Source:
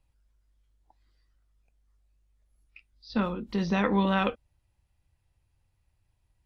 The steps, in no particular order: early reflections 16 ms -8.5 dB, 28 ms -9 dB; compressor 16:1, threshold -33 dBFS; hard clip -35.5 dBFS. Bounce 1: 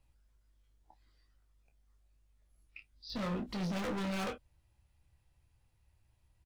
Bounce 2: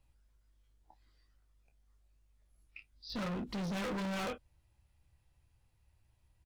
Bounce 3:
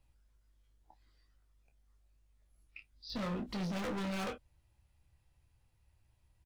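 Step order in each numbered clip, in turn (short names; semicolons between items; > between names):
hard clip > compressor > early reflections; early reflections > hard clip > compressor; hard clip > early reflections > compressor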